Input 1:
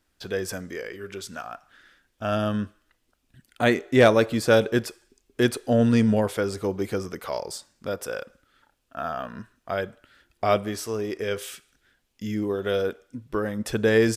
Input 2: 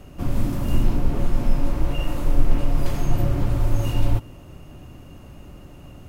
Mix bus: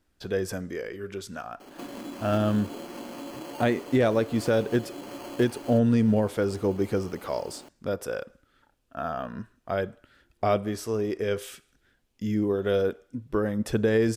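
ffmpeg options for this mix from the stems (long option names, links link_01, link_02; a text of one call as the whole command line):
ffmpeg -i stem1.wav -i stem2.wav -filter_complex "[0:a]tiltshelf=frequency=810:gain=3.5,volume=-1dB[link_01];[1:a]highpass=frequency=260:width=0.5412,highpass=frequency=260:width=1.3066,acompressor=threshold=-41dB:ratio=2.5,acrusher=samples=12:mix=1:aa=0.000001,adelay=1600,volume=1.5dB[link_02];[link_01][link_02]amix=inputs=2:normalize=0,alimiter=limit=-13.5dB:level=0:latency=1:release=343" out.wav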